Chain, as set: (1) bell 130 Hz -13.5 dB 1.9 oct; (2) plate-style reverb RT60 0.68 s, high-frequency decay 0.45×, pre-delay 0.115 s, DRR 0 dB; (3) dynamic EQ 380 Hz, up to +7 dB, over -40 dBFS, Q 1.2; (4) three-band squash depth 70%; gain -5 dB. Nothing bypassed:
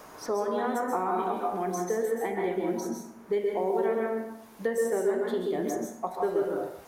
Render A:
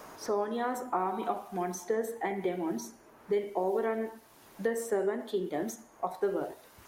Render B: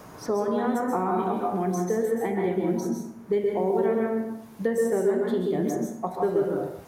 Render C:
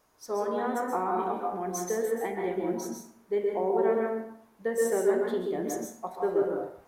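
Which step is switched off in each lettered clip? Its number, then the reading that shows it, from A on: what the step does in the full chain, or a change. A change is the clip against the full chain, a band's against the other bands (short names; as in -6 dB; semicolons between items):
2, momentary loudness spread change +2 LU; 1, 125 Hz band +9.0 dB; 4, crest factor change +3.0 dB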